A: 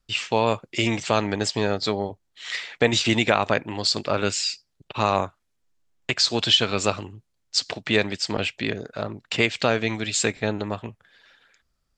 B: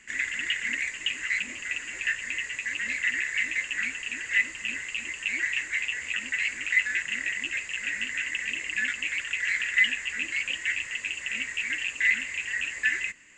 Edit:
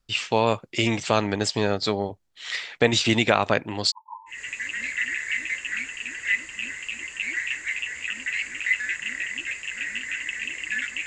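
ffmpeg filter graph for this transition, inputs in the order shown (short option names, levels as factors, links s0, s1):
-filter_complex "[0:a]asplit=3[s0][s1][s2];[s0]afade=t=out:st=3.9:d=0.02[s3];[s1]asuperpass=centerf=950:order=12:qfactor=5.3,afade=t=in:st=3.9:d=0.02,afade=t=out:st=4.44:d=0.02[s4];[s2]afade=t=in:st=4.44:d=0.02[s5];[s3][s4][s5]amix=inputs=3:normalize=0,apad=whole_dur=11.06,atrim=end=11.06,atrim=end=4.44,asetpts=PTS-STARTPTS[s6];[1:a]atrim=start=2.32:end=9.12,asetpts=PTS-STARTPTS[s7];[s6][s7]acrossfade=d=0.18:c1=tri:c2=tri"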